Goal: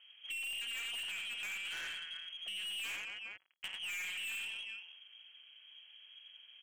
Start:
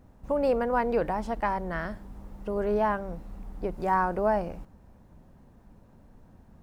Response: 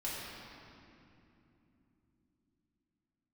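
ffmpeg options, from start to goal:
-filter_complex "[0:a]asettb=1/sr,asplit=3[link_01][link_02][link_03];[link_01]atrim=end=2.844[link_04];[link_02]atrim=start=2.84:end=3.74,asetpts=PTS-STARTPTS,afade=type=in:duration=0.004:curve=qsin,afade=type=out:start_time=0.896:duration=0.004:curve=qsin,acrusher=bits=3:mix=0:aa=0.5[link_05];[link_03]atrim=start=3.736[link_06];[link_04][link_05]acrossfade=duration=0.004:curve1=hsin:curve2=qsin[link_07];[link_07][link_06]acrossfade=duration=0.004:curve1=qsin:curve2=hsin,lowshelf=frequency=260:gain=-5.5,aecho=1:1:50|88|221|409:0.282|0.501|0.178|0.119,lowpass=frequency=2800:width_type=q:width=0.5098,lowpass=frequency=2800:width_type=q:width=0.6013,lowpass=frequency=2800:width_type=q:width=0.9,lowpass=frequency=2800:width_type=q:width=2.563,afreqshift=-3300,asettb=1/sr,asplit=3[link_08][link_09][link_10];[link_08]atrim=end=1.654[link_11];[link_09]atrim=start=1.65:end=2.19,asetpts=PTS-STARTPTS,afade=type=in:duration=0.004:curve=qsin,afade=type=out:start_time=0.536:duration=0.004:curve=qsin,equalizer=frequency=1100:width=0.46:gain=4.5[link_12];[link_10]atrim=start=2.186[link_13];[link_11][link_12]acrossfade=duration=0.004:curve1=hsin:curve2=qsin[link_14];[link_14][link_13]acrossfade=duration=0.004:curve1=qsin:curve2=hsin,aeval=exprs='(tanh(39.8*val(0)+0.1)-tanh(0.1))/39.8':channel_layout=same,acompressor=threshold=-40dB:ratio=3,volume=-1.5dB"

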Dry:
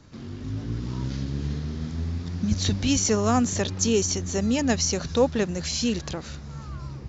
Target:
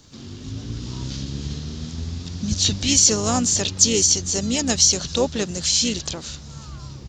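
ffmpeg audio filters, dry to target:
ffmpeg -i in.wav -filter_complex "[0:a]aexciter=amount=4.3:drive=2.5:freq=3000,asplit=3[link_01][link_02][link_03];[link_02]asetrate=33038,aresample=44100,atempo=1.33484,volume=-11dB[link_04];[link_03]asetrate=52444,aresample=44100,atempo=0.840896,volume=-17dB[link_05];[link_01][link_04][link_05]amix=inputs=3:normalize=0,volume=-1dB" out.wav

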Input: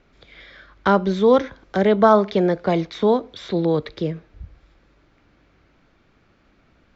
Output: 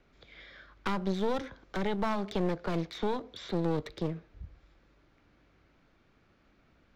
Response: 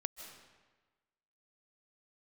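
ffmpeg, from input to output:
-filter_complex "[0:a]acrossover=split=230|3000[link_01][link_02][link_03];[link_02]acompressor=threshold=-19dB:ratio=6[link_04];[link_01][link_04][link_03]amix=inputs=3:normalize=0,aeval=exprs='clip(val(0),-1,0.0282)':channel_layout=same,volume=-7dB"

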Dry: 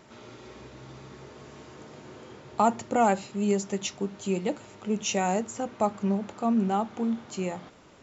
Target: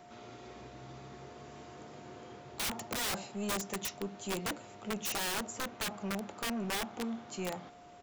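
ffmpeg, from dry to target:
ffmpeg -i in.wav -filter_complex "[0:a]acrossover=split=140|420|1900[link_01][link_02][link_03][link_04];[link_01]alimiter=level_in=20.5dB:limit=-24dB:level=0:latency=1:release=462,volume=-20.5dB[link_05];[link_02]asoftclip=type=tanh:threshold=-34dB[link_06];[link_03]aecho=1:1:89|178|267|356:0.0794|0.0405|0.0207|0.0105[link_07];[link_05][link_06][link_07][link_04]amix=inputs=4:normalize=0,aeval=exprs='val(0)+0.00316*sin(2*PI*710*n/s)':channel_layout=same,aeval=exprs='(mod(17.8*val(0)+1,2)-1)/17.8':channel_layout=same,volume=-4dB" out.wav

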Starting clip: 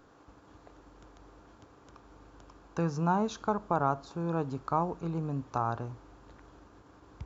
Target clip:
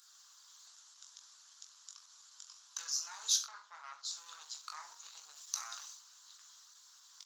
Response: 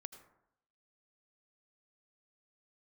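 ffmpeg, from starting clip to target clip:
-filter_complex "[0:a]asettb=1/sr,asplit=3[link_01][link_02][link_03];[link_01]atrim=end=5.364[link_04];[link_02]atrim=start=5.36:end=5.95,asetpts=PTS-STARTPTS,afade=type=in:duration=0.004:curve=qsin,afade=type=out:start_time=0.586:duration=0.004:curve=qsin,highshelf=frequency=3400:gain=8[link_05];[link_03]atrim=start=5.946[link_06];[link_04][link_05]acrossfade=duration=0.004:curve1=hsin:curve2=qsin[link_07];[link_07][link_06]acrossfade=duration=0.004:curve1=qsin:curve2=hsin,alimiter=level_in=0.5dB:limit=-24dB:level=0:latency=1:release=10,volume=-0.5dB,aeval=exprs='0.0596*(cos(1*acos(clip(val(0)/0.0596,-1,1)))-cos(1*PI/2))+0.0119*(cos(2*acos(clip(val(0)/0.0596,-1,1)))-cos(2*PI/2))+0.000422*(cos(3*acos(clip(val(0)/0.0596,-1,1)))-cos(3*PI/2))+0.000422*(cos(7*acos(clip(val(0)/0.0596,-1,1)))-cos(7*PI/2))':channel_layout=same,highpass=frequency=1300:width=0.5412,highpass=frequency=1300:width=1.3066,asettb=1/sr,asplit=3[link_08][link_09][link_10];[link_08]atrim=end=3.444[link_11];[link_09]atrim=start=3.44:end=4.05,asetpts=PTS-STARTPTS,afade=type=in:duration=0.004:curve=qsin,afade=type=out:start_time=0.606:duration=0.004:curve=qsin,adynamicsmooth=sensitivity=2.5:basefreq=4000[link_12];[link_10]atrim=start=4.046[link_13];[link_11][link_12]acrossfade=duration=0.004:curve1=hsin:curve2=qsin[link_14];[link_14][link_13]acrossfade=duration=0.004:curve1=qsin:curve2=hsin,aecho=1:1:20|42|66.2|92.82|122.1:0.631|0.398|0.251|0.158|0.1,aexciter=amount=13.5:drive=3.5:freq=3500,volume=-4.5dB" -ar 48000 -c:a libopus -b:a 20k

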